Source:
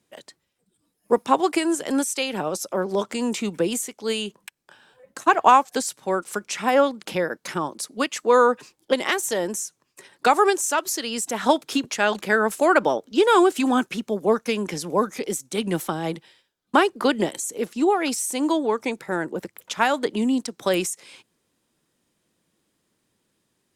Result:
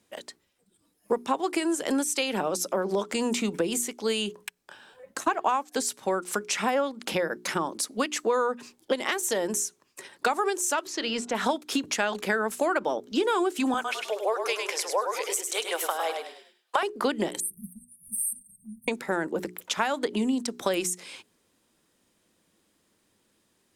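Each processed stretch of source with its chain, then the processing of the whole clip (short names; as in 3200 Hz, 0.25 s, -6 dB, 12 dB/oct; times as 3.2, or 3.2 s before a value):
10.87–11.35 G.711 law mismatch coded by A + LPF 4100 Hz + de-hum 65.32 Hz, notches 23
13.74–16.83 steep high-pass 490 Hz + frequency-shifting echo 0.102 s, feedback 32%, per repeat -30 Hz, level -6.5 dB
17.4–18.88 brick-wall FIR band-stop 210–8400 Hz + gate -57 dBFS, range -10 dB + upward compressor, threshold -47 dBFS
whole clip: bell 140 Hz -7.5 dB 0.34 oct; notches 60/120/180/240/300/360/420 Hz; compressor 4:1, threshold -27 dBFS; gain +3 dB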